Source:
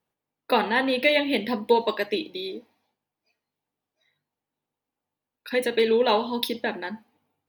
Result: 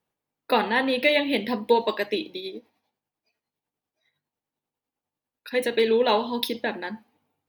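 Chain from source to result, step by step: 2.37–5.58 tremolo 10 Hz, depth 51%

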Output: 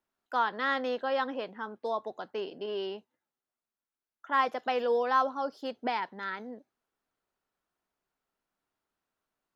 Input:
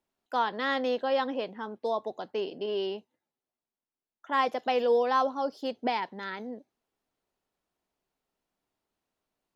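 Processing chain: bell 1400 Hz +7.5 dB 0.93 oct; gain -4 dB

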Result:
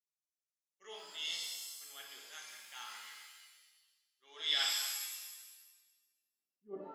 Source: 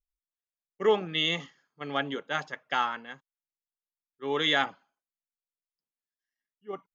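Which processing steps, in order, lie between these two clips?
band-pass sweep 6200 Hz -> 260 Hz, 4.32–5.89; transient shaper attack -6 dB, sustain -2 dB; shimmer reverb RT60 1.2 s, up +7 st, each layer -2 dB, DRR -1 dB; gain -1.5 dB

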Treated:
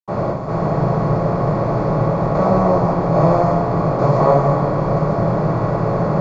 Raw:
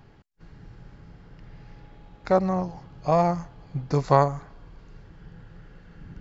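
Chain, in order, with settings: per-bin compression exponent 0.2; reverb RT60 0.70 s, pre-delay 77 ms, DRR -60 dB; gain -1 dB

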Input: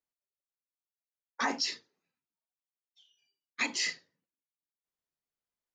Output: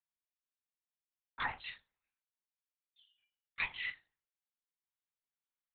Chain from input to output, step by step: HPF 880 Hz 12 dB/oct; LPC vocoder at 8 kHz whisper; gain -4 dB

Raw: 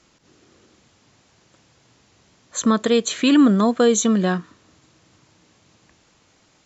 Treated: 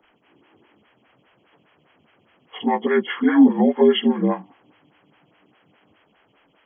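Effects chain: inharmonic rescaling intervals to 76%; photocell phaser 4.9 Hz; gain +3 dB

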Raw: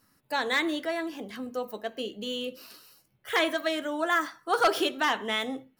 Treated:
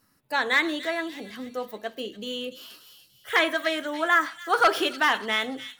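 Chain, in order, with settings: dynamic EQ 1700 Hz, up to +6 dB, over -38 dBFS, Q 0.84; on a send: thin delay 0.29 s, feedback 42%, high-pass 3500 Hz, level -7.5 dB

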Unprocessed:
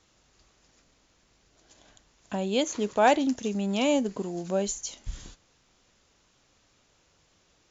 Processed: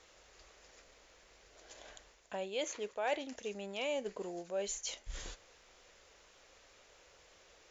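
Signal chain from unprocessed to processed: dynamic EQ 2500 Hz, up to +5 dB, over -44 dBFS, Q 0.99; reverse; compressor 4:1, threshold -42 dBFS, peak gain reduction 22 dB; reverse; ten-band EQ 125 Hz -11 dB, 250 Hz -8 dB, 500 Hz +8 dB, 2000 Hz +5 dB; gain +1.5 dB

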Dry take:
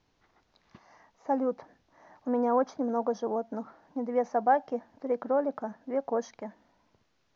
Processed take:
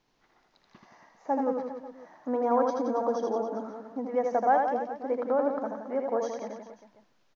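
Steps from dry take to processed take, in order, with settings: bell 73 Hz -13.5 dB 1.4 oct; on a send: reverse bouncing-ball echo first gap 80 ms, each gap 1.15×, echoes 5

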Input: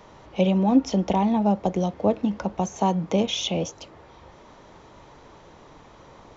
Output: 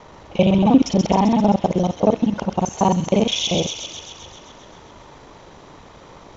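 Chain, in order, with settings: local time reversal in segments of 39 ms; thin delay 0.131 s, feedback 68%, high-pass 2600 Hz, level -4 dB; gain +5.5 dB

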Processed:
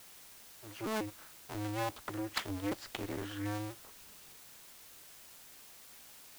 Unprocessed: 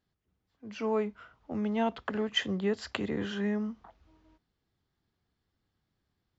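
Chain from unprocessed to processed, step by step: cycle switcher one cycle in 2, inverted; requantised 8-bit, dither triangular; gain -7 dB

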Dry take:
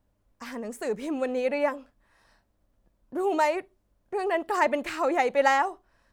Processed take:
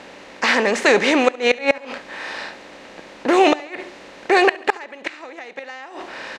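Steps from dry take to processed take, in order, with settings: per-bin compression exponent 0.6; weighting filter D; in parallel at -1 dB: limiter -12 dBFS, peak gain reduction 10 dB; on the sum: flipped gate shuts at -7 dBFS, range -26 dB; air absorption 55 m; feedback echo 67 ms, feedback 50%, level -21 dB; speed mistake 25 fps video run at 24 fps; gain +5 dB

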